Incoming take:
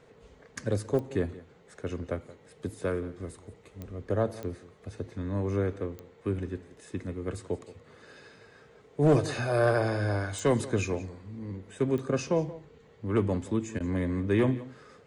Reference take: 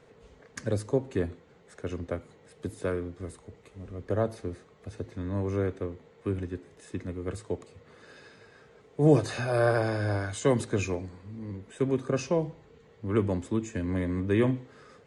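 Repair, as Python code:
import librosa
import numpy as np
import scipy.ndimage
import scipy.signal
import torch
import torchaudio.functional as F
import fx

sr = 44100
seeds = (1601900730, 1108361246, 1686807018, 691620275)

y = fx.fix_declip(x, sr, threshold_db=-16.0)
y = fx.fix_declick_ar(y, sr, threshold=10.0)
y = fx.fix_interpolate(y, sr, at_s=(13.79,), length_ms=11.0)
y = fx.fix_echo_inverse(y, sr, delay_ms=175, level_db=-18.0)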